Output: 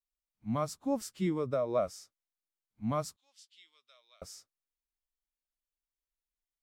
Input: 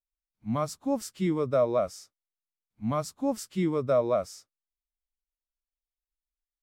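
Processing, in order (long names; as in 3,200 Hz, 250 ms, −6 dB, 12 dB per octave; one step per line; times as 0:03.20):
0:01.28–0:01.75: downward compressor, threshold −24 dBFS, peak gain reduction 5.5 dB
0:03.16–0:04.22: four-pole ladder band-pass 3,900 Hz, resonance 50%
level −3.5 dB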